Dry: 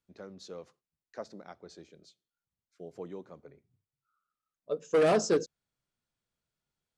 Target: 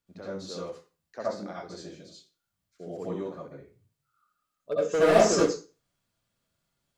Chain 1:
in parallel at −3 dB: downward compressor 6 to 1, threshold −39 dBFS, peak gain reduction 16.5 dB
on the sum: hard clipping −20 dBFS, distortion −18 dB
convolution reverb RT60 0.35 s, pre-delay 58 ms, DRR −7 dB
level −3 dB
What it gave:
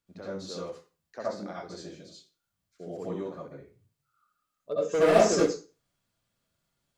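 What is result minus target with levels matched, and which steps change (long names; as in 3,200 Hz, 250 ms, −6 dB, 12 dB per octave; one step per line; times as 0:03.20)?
downward compressor: peak gain reduction +10 dB
change: downward compressor 6 to 1, threshold −27 dBFS, peak gain reduction 6.5 dB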